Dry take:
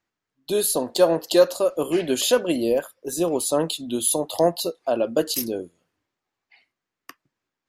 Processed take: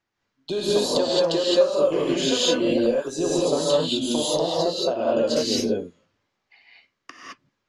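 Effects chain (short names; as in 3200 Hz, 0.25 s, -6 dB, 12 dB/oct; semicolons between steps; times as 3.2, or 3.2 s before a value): LPF 6500 Hz 24 dB/oct; compressor, threshold -24 dBFS, peak gain reduction 13 dB; non-linear reverb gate 0.24 s rising, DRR -6 dB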